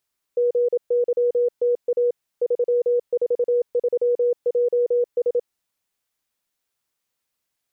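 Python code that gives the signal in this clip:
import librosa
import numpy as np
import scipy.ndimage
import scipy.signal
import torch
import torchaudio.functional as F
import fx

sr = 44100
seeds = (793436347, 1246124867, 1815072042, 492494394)

y = fx.morse(sr, text='GYTA 343JS', wpm=27, hz=484.0, level_db=-16.0)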